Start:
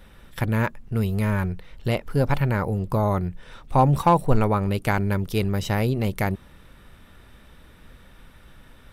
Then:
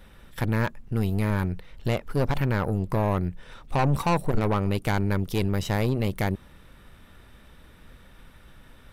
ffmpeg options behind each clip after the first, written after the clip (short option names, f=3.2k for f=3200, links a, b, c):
-af "aeval=exprs='(tanh(10*val(0)+0.6)-tanh(0.6))/10':c=same,volume=1.5dB"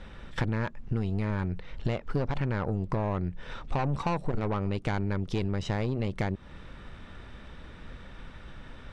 -af "lowpass=f=7.6k:w=0.5412,lowpass=f=7.6k:w=1.3066,highshelf=f=5.8k:g=-8.5,acompressor=threshold=-31dB:ratio=6,volume=5.5dB"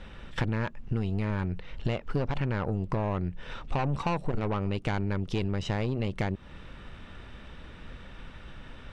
-af "equalizer=f=2.8k:t=o:w=0.34:g=4.5"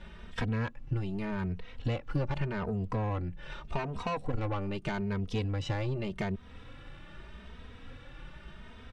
-filter_complex "[0:a]asplit=2[a][b];[b]adelay=2.9,afreqshift=0.83[c];[a][c]amix=inputs=2:normalize=1"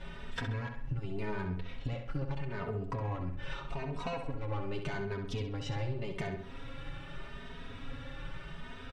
-filter_complex "[0:a]aecho=1:1:7.3:0.67,acompressor=threshold=-36dB:ratio=6,asplit=2[a][b];[b]adelay=66,lowpass=f=4.5k:p=1,volume=-6dB,asplit=2[c][d];[d]adelay=66,lowpass=f=4.5k:p=1,volume=0.46,asplit=2[e][f];[f]adelay=66,lowpass=f=4.5k:p=1,volume=0.46,asplit=2[g][h];[h]adelay=66,lowpass=f=4.5k:p=1,volume=0.46,asplit=2[i][j];[j]adelay=66,lowpass=f=4.5k:p=1,volume=0.46,asplit=2[k][l];[l]adelay=66,lowpass=f=4.5k:p=1,volume=0.46[m];[a][c][e][g][i][k][m]amix=inputs=7:normalize=0,volume=2dB"